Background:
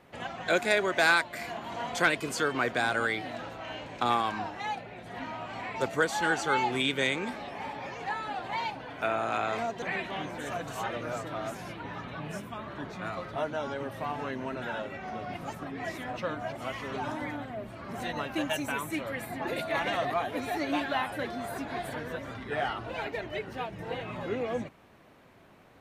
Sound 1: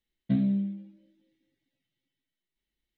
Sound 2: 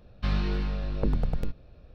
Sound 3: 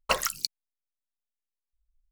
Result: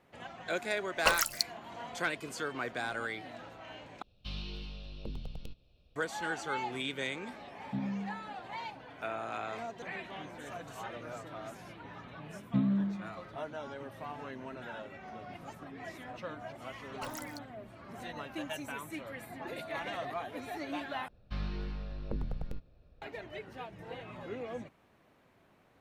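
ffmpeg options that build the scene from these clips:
-filter_complex "[3:a]asplit=2[a][b];[2:a]asplit=2[c][d];[1:a]asplit=2[e][f];[0:a]volume=-8.5dB[g];[c]highshelf=f=2.3k:t=q:w=3:g=8.5[h];[b]alimiter=limit=-16dB:level=0:latency=1:release=11[i];[g]asplit=3[j][k][l];[j]atrim=end=4.024[m];[h]atrim=end=1.94,asetpts=PTS-STARTPTS,volume=-15dB[n];[k]atrim=start=5.956:end=21.084[o];[d]atrim=end=1.94,asetpts=PTS-STARTPTS,volume=-10dB[p];[l]atrim=start=23.016[q];[a]atrim=end=2.11,asetpts=PTS-STARTPTS,volume=-1.5dB,afade=t=in:d=0.004:c=hsin,afade=t=out:st=2.106:d=0.004:c=hsin,adelay=960[r];[e]atrim=end=2.97,asetpts=PTS-STARTPTS,volume=-10.5dB,afade=t=in:d=0.004:c=hsin,afade=t=out:st=2.966:d=0.004:c=hsin,adelay=7430[s];[f]atrim=end=2.97,asetpts=PTS-STARTPTS,volume=-3.5dB,afade=t=in:d=0.004:c=hsin,afade=t=out:st=2.966:d=0.004:c=hsin,adelay=12240[t];[i]atrim=end=2.11,asetpts=PTS-STARTPTS,volume=-15dB,afade=t=in:d=0.004:c=hsin,afade=t=out:st=2.106:d=0.004:c=hsin,adelay=16920[u];[m][n]acrossfade=d=0.004:c1=hsin:c2=hsin[v];[v][o]acrossfade=d=0.004:c1=hsin:c2=hsin[w];[w][p]acrossfade=d=0.004:c1=hsin:c2=hsin[x];[x][q]acrossfade=d=0.004:c1=hsin:c2=hsin[y];[y][r][s][t][u]amix=inputs=5:normalize=0"

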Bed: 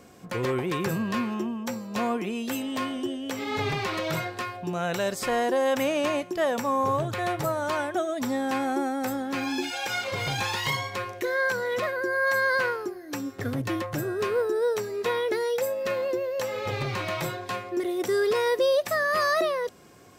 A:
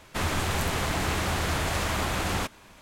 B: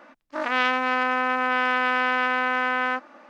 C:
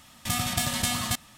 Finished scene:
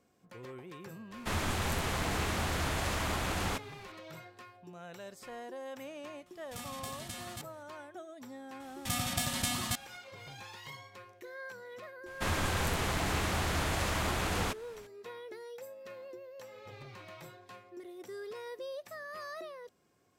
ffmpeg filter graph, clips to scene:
-filter_complex "[1:a]asplit=2[a][b];[3:a]asplit=2[c][d];[0:a]volume=-19.5dB[e];[c]acompressor=mode=upward:threshold=-44dB:ratio=2.5:attack=3.2:release=140:knee=2.83:detection=peak[f];[a]atrim=end=2.81,asetpts=PTS-STARTPTS,volume=-5.5dB,afade=t=in:d=0.004:c=hsin,afade=t=out:st=2.806:d=0.004:c=hsin,adelay=1110[g];[f]atrim=end=1.37,asetpts=PTS-STARTPTS,volume=-17dB,afade=t=in:d=0.004:c=hsin,afade=t=out:st=1.366:d=0.004:c=hsin,adelay=276066S[h];[d]atrim=end=1.37,asetpts=PTS-STARTPTS,volume=-6dB,afade=t=in:d=0.004:c=hsin,afade=t=out:st=1.366:d=0.004:c=hsin,adelay=8600[i];[b]atrim=end=2.81,asetpts=PTS-STARTPTS,volume=-4.5dB,afade=t=in:d=0.004:c=hsin,afade=t=out:st=2.806:d=0.004:c=hsin,adelay=12060[j];[e][g][h][i][j]amix=inputs=5:normalize=0"

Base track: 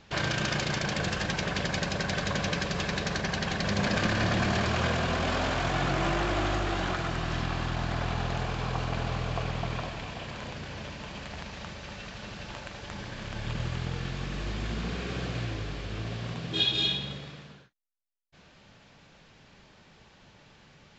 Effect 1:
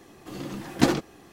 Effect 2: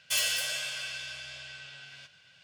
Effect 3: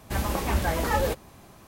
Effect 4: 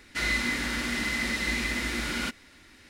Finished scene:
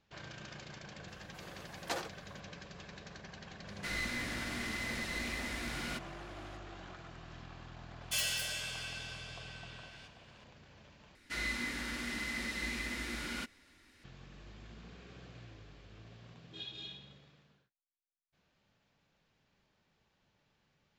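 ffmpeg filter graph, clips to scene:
-filter_complex "[4:a]asplit=2[a][b];[0:a]volume=-19.5dB[c];[1:a]highpass=f=480:w=0.5412,highpass=f=480:w=1.3066[d];[a]aeval=exprs='clip(val(0),-1,0.0376)':c=same[e];[c]asplit=2[f][g];[f]atrim=end=11.154[h];[b]atrim=end=2.89,asetpts=PTS-STARTPTS,volume=-9.5dB[i];[g]atrim=start=14.036[j];[d]atrim=end=1.32,asetpts=PTS-STARTPTS,volume=-11dB,afade=t=in:d=0.004:c=hsin,afade=t=out:st=1.316:d=0.004:c=hsin,adelay=1080[k];[e]atrim=end=2.89,asetpts=PTS-STARTPTS,volume=-9dB,afade=t=in:d=0.004:c=hsin,afade=t=out:st=2.886:d=0.004:c=hsin,adelay=3680[l];[2:a]atrim=end=2.43,asetpts=PTS-STARTPTS,volume=-6dB,afade=t=in:d=0.004:c=hsin,afade=t=out:st=2.426:d=0.004:c=hsin,adelay=8010[m];[h][i]acrossfade=d=0.004:c1=hsin:c2=hsin[n];[n][j]acrossfade=d=0.004:c1=hsin:c2=hsin[o];[o][k][l][m]amix=inputs=4:normalize=0"

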